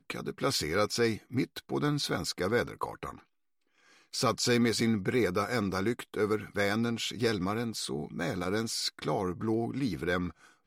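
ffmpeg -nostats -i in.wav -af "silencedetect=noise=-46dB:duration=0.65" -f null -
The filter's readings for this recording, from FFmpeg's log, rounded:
silence_start: 3.20
silence_end: 4.13 | silence_duration: 0.94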